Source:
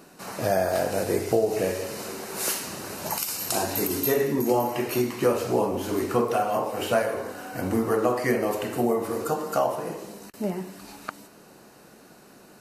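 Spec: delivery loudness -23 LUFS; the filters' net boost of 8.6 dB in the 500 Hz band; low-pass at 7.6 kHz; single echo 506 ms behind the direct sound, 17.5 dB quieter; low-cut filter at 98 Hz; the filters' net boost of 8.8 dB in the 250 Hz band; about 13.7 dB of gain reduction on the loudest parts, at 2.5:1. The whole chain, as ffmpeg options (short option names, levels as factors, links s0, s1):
-af "highpass=98,lowpass=7600,equalizer=f=250:t=o:g=8.5,equalizer=f=500:t=o:g=8,acompressor=threshold=0.0316:ratio=2.5,aecho=1:1:506:0.133,volume=2.11"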